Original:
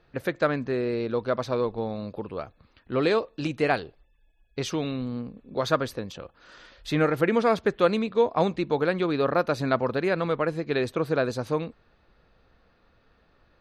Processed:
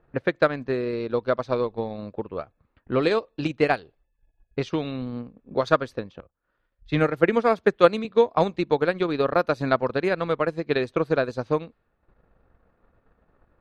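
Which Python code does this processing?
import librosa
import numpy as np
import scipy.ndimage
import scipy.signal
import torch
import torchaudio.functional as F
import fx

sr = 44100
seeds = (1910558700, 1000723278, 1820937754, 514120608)

y = fx.env_lowpass(x, sr, base_hz=1400.0, full_db=-20.5)
y = fx.transient(y, sr, attack_db=5, sustain_db=-9)
y = fx.band_widen(y, sr, depth_pct=70, at=(6.2, 8.05))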